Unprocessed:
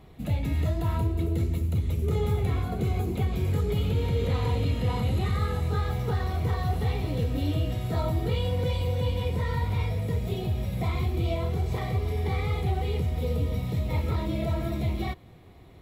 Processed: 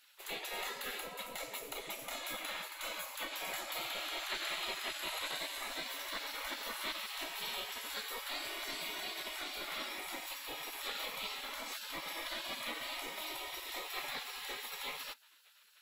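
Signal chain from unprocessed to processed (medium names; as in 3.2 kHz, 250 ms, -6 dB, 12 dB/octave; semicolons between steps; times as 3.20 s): 4.17–4.88 s: crackle 110 per s -47 dBFS; spectral gate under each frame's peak -30 dB weak; trim +6 dB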